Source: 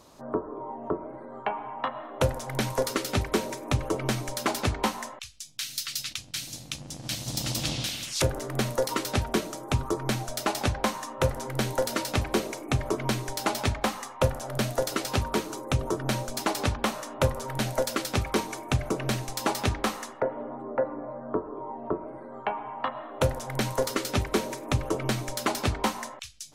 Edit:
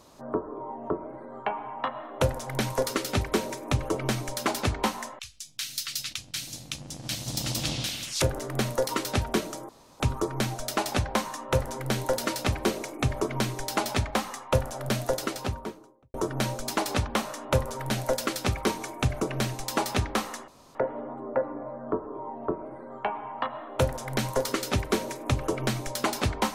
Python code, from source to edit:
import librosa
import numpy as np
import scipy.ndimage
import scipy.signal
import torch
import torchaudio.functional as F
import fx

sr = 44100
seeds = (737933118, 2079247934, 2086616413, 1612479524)

y = fx.studio_fade_out(x, sr, start_s=14.74, length_s=1.09)
y = fx.edit(y, sr, fx.insert_room_tone(at_s=9.69, length_s=0.31),
    fx.insert_room_tone(at_s=20.17, length_s=0.27), tone=tone)